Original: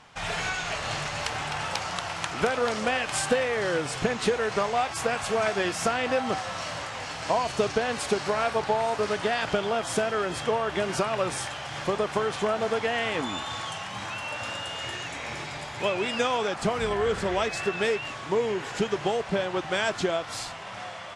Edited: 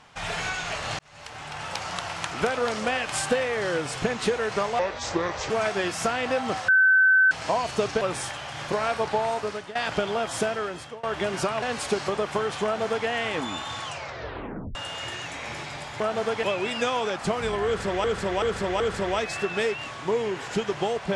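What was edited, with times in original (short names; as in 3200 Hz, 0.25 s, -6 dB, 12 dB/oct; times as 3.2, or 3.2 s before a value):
0.99–1.95 fade in
4.79–5.31 speed 73%
6.49–7.12 bleep 1530 Hz -14.5 dBFS
7.82–8.28 swap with 11.18–11.89
8.86–9.31 fade out, to -16.5 dB
10.03–10.59 fade out, to -23.5 dB
12.45–12.88 copy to 15.81
13.65 tape stop 0.91 s
17.04–17.42 loop, 4 plays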